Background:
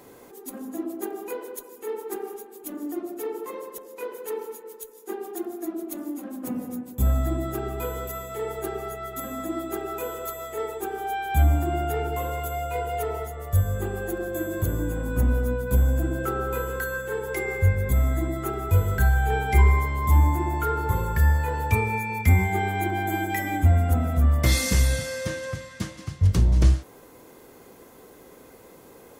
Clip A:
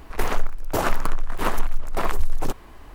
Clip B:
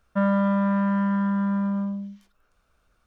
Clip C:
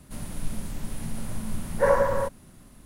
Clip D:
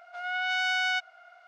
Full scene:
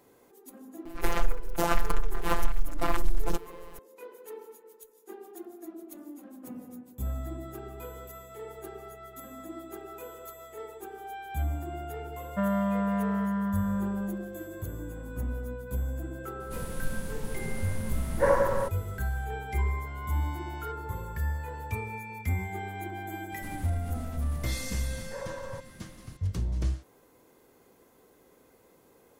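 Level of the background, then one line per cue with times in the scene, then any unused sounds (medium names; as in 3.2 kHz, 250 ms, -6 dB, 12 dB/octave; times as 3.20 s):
background -11.5 dB
0.85 s: add A -1.5 dB + robot voice 171 Hz
12.21 s: add B -6 dB
16.40 s: add C -2.5 dB
19.72 s: add D -16.5 dB + compression, threshold -30 dBFS
23.32 s: add C -0.5 dB + compression, threshold -37 dBFS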